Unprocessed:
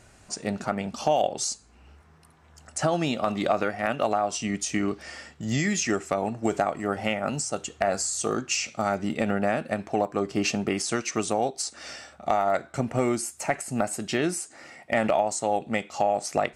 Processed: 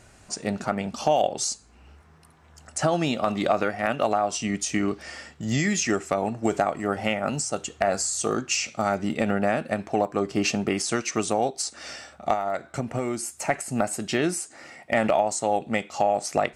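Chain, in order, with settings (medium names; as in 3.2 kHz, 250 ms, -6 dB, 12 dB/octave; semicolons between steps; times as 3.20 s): 12.33–13.37 s: compression 2.5:1, threshold -27 dBFS, peak gain reduction 6 dB; trim +1.5 dB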